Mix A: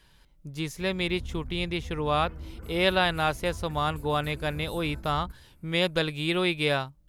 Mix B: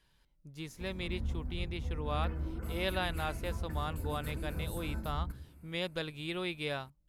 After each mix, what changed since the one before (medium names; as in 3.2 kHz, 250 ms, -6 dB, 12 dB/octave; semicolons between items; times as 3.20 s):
speech -11.0 dB; background: send +8.0 dB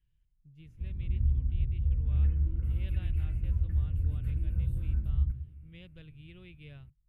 background +9.5 dB; master: add FFT filter 120 Hz 0 dB, 230 Hz -16 dB, 420 Hz -19 dB, 870 Hz -29 dB, 2.9 kHz -14 dB, 4.3 kHz -29 dB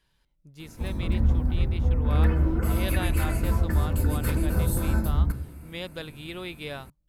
background +5.0 dB; master: remove FFT filter 120 Hz 0 dB, 230 Hz -16 dB, 420 Hz -19 dB, 870 Hz -29 dB, 2.9 kHz -14 dB, 4.3 kHz -29 dB